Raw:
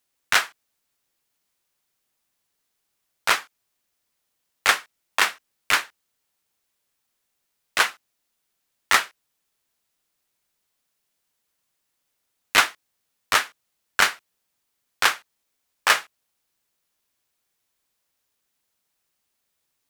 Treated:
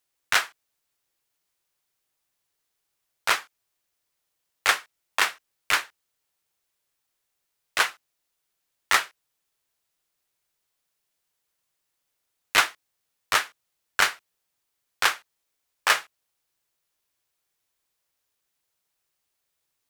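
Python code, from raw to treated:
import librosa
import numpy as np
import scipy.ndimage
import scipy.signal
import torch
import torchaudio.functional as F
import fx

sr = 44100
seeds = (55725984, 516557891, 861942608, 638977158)

y = fx.peak_eq(x, sr, hz=230.0, db=-13.0, octaves=0.22)
y = F.gain(torch.from_numpy(y), -2.5).numpy()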